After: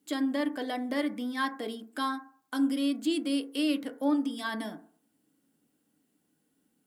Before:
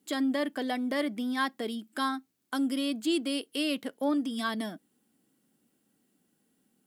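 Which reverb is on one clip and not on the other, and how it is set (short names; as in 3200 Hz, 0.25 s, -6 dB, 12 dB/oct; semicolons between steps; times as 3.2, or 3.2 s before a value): FDN reverb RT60 0.49 s, low-frequency decay 0.9×, high-frequency decay 0.25×, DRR 6 dB; gain -2.5 dB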